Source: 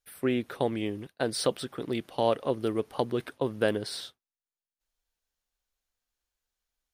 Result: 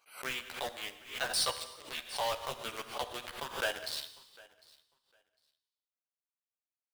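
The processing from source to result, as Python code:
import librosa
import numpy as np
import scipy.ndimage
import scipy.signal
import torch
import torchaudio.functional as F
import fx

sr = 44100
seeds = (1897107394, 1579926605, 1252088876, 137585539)

p1 = fx.wiener(x, sr, points=25)
p2 = scipy.signal.sosfilt(scipy.signal.butter(2, 1300.0, 'highpass', fs=sr, output='sos'), p1)
p3 = fx.quant_companded(p2, sr, bits=2)
p4 = p2 + (p3 * 10.0 ** (-3.5 / 20.0))
p5 = fx.chorus_voices(p4, sr, voices=6, hz=0.43, base_ms=13, depth_ms=1.0, mix_pct=50)
p6 = fx.echo_feedback(p5, sr, ms=753, feedback_pct=18, wet_db=-23)
p7 = fx.rev_gated(p6, sr, seeds[0], gate_ms=400, shape='falling', drr_db=9.5)
y = fx.pre_swell(p7, sr, db_per_s=130.0)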